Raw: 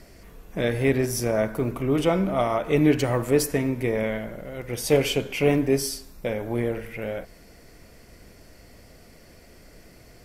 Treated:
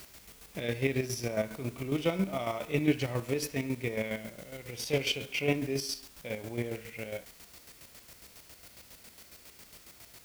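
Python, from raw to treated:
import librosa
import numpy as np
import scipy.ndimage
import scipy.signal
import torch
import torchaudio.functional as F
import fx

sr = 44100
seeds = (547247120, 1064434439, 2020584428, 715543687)

y = scipy.signal.sosfilt(scipy.signal.butter(2, 46.0, 'highpass', fs=sr, output='sos'), x)
y = fx.band_shelf(y, sr, hz=3600.0, db=9.0, octaves=1.7)
y = fx.dmg_noise_colour(y, sr, seeds[0], colour='white', level_db=-43.0)
y = fx.chopper(y, sr, hz=7.3, depth_pct=65, duty_pct=35)
y = fx.hpss(y, sr, part='percussive', gain_db=-7)
y = y * 10.0 ** (-3.5 / 20.0)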